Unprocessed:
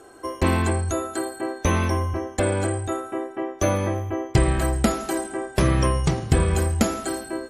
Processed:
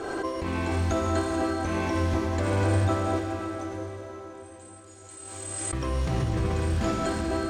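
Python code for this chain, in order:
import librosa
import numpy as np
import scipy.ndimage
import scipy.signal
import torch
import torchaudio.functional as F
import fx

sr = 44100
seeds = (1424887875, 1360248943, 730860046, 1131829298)

y = fx.over_compress(x, sr, threshold_db=-24.0, ratio=-1.0)
y = fx.bandpass_q(y, sr, hz=8000.0, q=5.6, at=(3.19, 5.73))
y = fx.mod_noise(y, sr, seeds[0], snr_db=15)
y = fx.air_absorb(y, sr, metres=100.0)
y = fx.rev_plate(y, sr, seeds[1], rt60_s=4.7, hf_ratio=0.95, predelay_ms=0, drr_db=0.0)
y = fx.pre_swell(y, sr, db_per_s=26.0)
y = y * librosa.db_to_amplitude(-3.5)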